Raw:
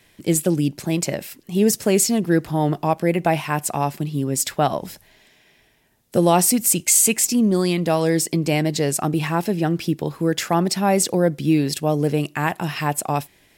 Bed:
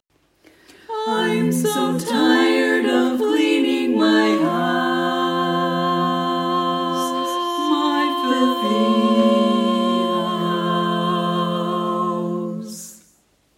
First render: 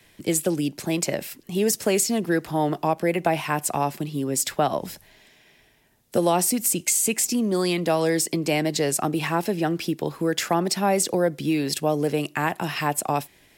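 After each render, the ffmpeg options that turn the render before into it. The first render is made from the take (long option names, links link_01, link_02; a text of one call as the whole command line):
ffmpeg -i in.wav -filter_complex "[0:a]acrossover=split=230|510[link_01][link_02][link_03];[link_01]acompressor=threshold=-35dB:ratio=4[link_04];[link_02]acompressor=threshold=-24dB:ratio=4[link_05];[link_03]acompressor=threshold=-20dB:ratio=4[link_06];[link_04][link_05][link_06]amix=inputs=3:normalize=0" out.wav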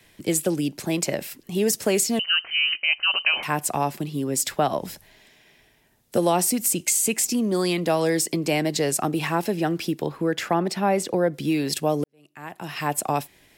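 ffmpeg -i in.wav -filter_complex "[0:a]asettb=1/sr,asplit=3[link_01][link_02][link_03];[link_01]atrim=end=2.194[link_04];[link_02]atrim=start=2.19:end=3.43,asetpts=PTS-STARTPTS,afade=type=in:duration=0.004:curve=qsin,afade=type=out:start_time=1.236:duration=0.004:curve=qsin,lowpass=frequency=2700:width_type=q:width=0.5098,lowpass=frequency=2700:width_type=q:width=0.6013,lowpass=frequency=2700:width_type=q:width=0.9,lowpass=frequency=2700:width_type=q:width=2.563,afreqshift=-3200[link_05];[link_03]atrim=start=3.426[link_06];[link_04][link_05]acrossfade=duration=0.004:curve1=hsin:curve2=qsin[link_07];[link_07][link_06]acrossfade=duration=0.004:curve1=qsin:curve2=hsin,asettb=1/sr,asplit=3[link_08][link_09][link_10];[link_08]atrim=end=10.064[link_11];[link_09]atrim=start=10.06:end=11.34,asetpts=PTS-STARTPTS,afade=type=in:duration=0.004:curve=qsin,afade=type=out:start_time=1.276:duration=0.004:curve=qsin,bass=frequency=250:gain=0,treble=frequency=4000:gain=-9[link_12];[link_10]atrim=start=11.336[link_13];[link_11][link_12]acrossfade=duration=0.004:curve1=hsin:curve2=qsin[link_14];[link_14][link_13]acrossfade=duration=0.004:curve1=qsin:curve2=hsin,asplit=2[link_15][link_16];[link_15]atrim=end=12.04,asetpts=PTS-STARTPTS,afade=type=out:start_time=12.036:duration=0.004:curve=hsin[link_17];[link_16]atrim=start=12.04,asetpts=PTS-STARTPTS,afade=type=in:duration=0.9:curve=qua[link_18];[link_17][link_18]concat=n=2:v=0:a=1" out.wav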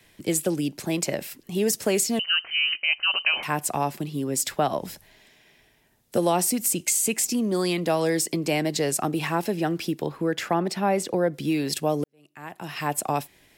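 ffmpeg -i in.wav -af "volume=-1.5dB" out.wav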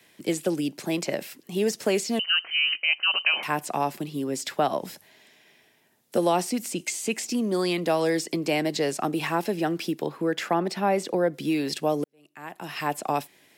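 ffmpeg -i in.wav -filter_complex "[0:a]highpass=180,acrossover=split=5800[link_01][link_02];[link_02]acompressor=threshold=-40dB:ratio=4:attack=1:release=60[link_03];[link_01][link_03]amix=inputs=2:normalize=0" out.wav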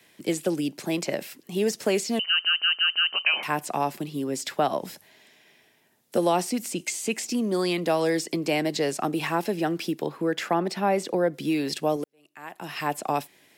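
ffmpeg -i in.wav -filter_complex "[0:a]asettb=1/sr,asplit=3[link_01][link_02][link_03];[link_01]atrim=end=11.964[link_04];[link_02]atrim=start=11.96:end=12.6,asetpts=PTS-STARTPTS,afade=type=in:duration=0.004:curve=qsin,afade=type=out:start_time=0.636:duration=0.004:curve=qsin,equalizer=frequency=120:width=0.39:gain=-6[link_05];[link_03]atrim=start=12.596[link_06];[link_04][link_05]acrossfade=duration=0.004:curve1=hsin:curve2=qsin[link_07];[link_07][link_06]acrossfade=duration=0.004:curve1=qsin:curve2=hsin,asplit=6[link_08][link_09][link_10][link_11][link_12][link_13];[link_08]atrim=end=2.452[link_14];[link_09]atrim=start=2.278:end=2.452[link_15];[link_10]atrim=start=2.278:end=2.452[link_16];[link_11]atrim=start=2.278:end=2.452[link_17];[link_12]atrim=start=2.278:end=2.452[link_18];[link_13]atrim=start=3.128[link_19];[link_14][link_15]acrossfade=duration=0.004:curve1=hsin:curve2=hsin[link_20];[link_20][link_16]acrossfade=duration=0.004:curve1=hsin:curve2=hsin[link_21];[link_21][link_17]acrossfade=duration=0.004:curve1=hsin:curve2=hsin[link_22];[link_22][link_18]acrossfade=duration=0.004:curve1=hsin:curve2=hsin[link_23];[link_23][link_19]acrossfade=duration=0.004:curve1=hsin:curve2=hsin" out.wav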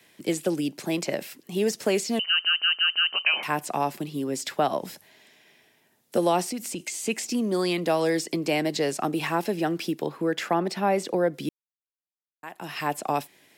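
ffmpeg -i in.wav -filter_complex "[0:a]asettb=1/sr,asplit=3[link_01][link_02][link_03];[link_01]atrim=end=6.484[link_04];[link_02]atrim=start=6.48:end=7.06,asetpts=PTS-STARTPTS,afade=type=in:duration=0.004:curve=qsin,afade=type=out:start_time=0.576:duration=0.004:curve=qsin,acompressor=threshold=-29dB:ratio=2.5:attack=3.2:release=140:knee=1:detection=peak[link_05];[link_03]atrim=start=7.056[link_06];[link_04][link_05]acrossfade=duration=0.004:curve1=hsin:curve2=qsin[link_07];[link_07][link_06]acrossfade=duration=0.004:curve1=qsin:curve2=hsin,asplit=3[link_08][link_09][link_10];[link_08]atrim=end=11.49,asetpts=PTS-STARTPTS,afade=type=out:start_time=11.486:duration=0.004:curve=hsin[link_11];[link_09]atrim=start=11.49:end=12.43,asetpts=PTS-STARTPTS,volume=0[link_12];[link_10]atrim=start=12.43,asetpts=PTS-STARTPTS,afade=type=in:duration=0.004:curve=hsin[link_13];[link_11][link_12][link_13]concat=n=3:v=0:a=1" out.wav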